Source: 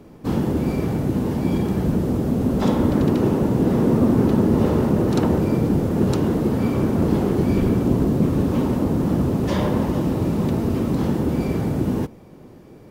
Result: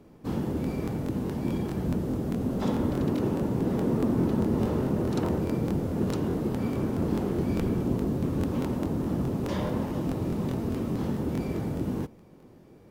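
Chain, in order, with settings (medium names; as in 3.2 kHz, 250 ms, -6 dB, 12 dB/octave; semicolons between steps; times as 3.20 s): crackling interface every 0.21 s, samples 1024, repeat, from 0.62 s; trim -8.5 dB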